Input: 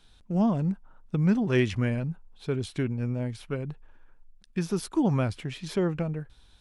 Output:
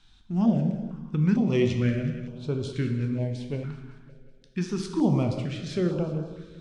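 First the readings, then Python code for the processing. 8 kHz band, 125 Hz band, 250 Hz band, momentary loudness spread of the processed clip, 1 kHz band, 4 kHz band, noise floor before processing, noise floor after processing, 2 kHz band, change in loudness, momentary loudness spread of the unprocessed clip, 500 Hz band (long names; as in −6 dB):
−2.0 dB, +1.5 dB, +2.0 dB, 11 LU, −2.0 dB, +0.5 dB, −57 dBFS, −56 dBFS, −2.5 dB, +1.5 dB, 12 LU, +1.0 dB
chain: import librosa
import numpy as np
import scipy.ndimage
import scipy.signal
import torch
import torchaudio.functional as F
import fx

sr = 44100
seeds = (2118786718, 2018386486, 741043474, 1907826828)

p1 = scipy.signal.sosfilt(scipy.signal.butter(4, 7500.0, 'lowpass', fs=sr, output='sos'), x)
p2 = p1 + fx.echo_feedback(p1, sr, ms=187, feedback_pct=58, wet_db=-15.5, dry=0)
p3 = fx.rev_plate(p2, sr, seeds[0], rt60_s=1.4, hf_ratio=0.7, predelay_ms=0, drr_db=4.0)
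y = fx.filter_held_notch(p3, sr, hz=2.2, low_hz=520.0, high_hz=1900.0)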